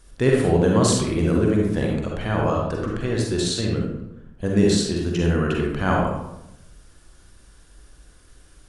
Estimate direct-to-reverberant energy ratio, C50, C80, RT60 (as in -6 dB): -1.5 dB, 0.5 dB, 4.5 dB, 0.85 s